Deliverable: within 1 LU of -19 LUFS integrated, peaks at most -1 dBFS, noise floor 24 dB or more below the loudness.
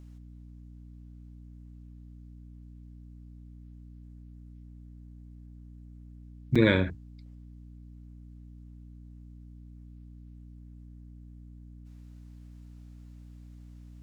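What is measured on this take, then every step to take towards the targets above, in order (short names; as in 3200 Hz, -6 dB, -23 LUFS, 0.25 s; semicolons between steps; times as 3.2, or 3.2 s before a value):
dropouts 1; longest dropout 5.7 ms; hum 60 Hz; harmonics up to 300 Hz; hum level -46 dBFS; loudness -25.5 LUFS; peak -8.5 dBFS; loudness target -19.0 LUFS
-> interpolate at 6.55, 5.7 ms; notches 60/120/180/240/300 Hz; gain +6.5 dB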